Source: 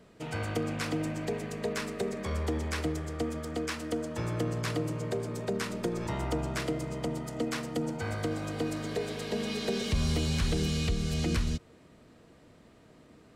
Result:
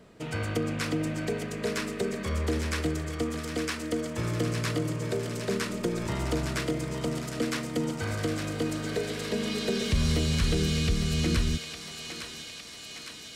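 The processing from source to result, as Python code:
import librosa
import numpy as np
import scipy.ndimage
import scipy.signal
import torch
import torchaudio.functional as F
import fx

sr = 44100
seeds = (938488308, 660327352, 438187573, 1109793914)

p1 = x + fx.echo_thinned(x, sr, ms=859, feedback_pct=76, hz=980.0, wet_db=-6.0, dry=0)
p2 = fx.dynamic_eq(p1, sr, hz=800.0, q=2.3, threshold_db=-52.0, ratio=4.0, max_db=-6)
y = p2 * 10.0 ** (3.0 / 20.0)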